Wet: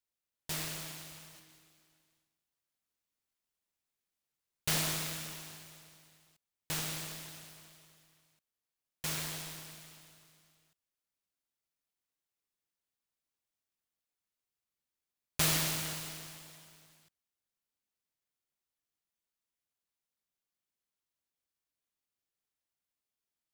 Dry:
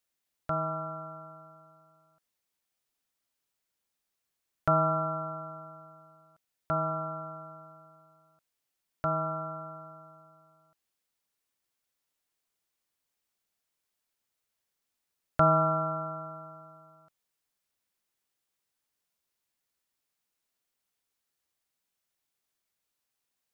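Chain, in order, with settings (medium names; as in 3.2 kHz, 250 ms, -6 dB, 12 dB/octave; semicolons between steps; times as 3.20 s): 1.30–4.68 s: flutter echo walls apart 8.1 m, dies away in 0.82 s; delay time shaken by noise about 3.1 kHz, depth 0.46 ms; trim -7 dB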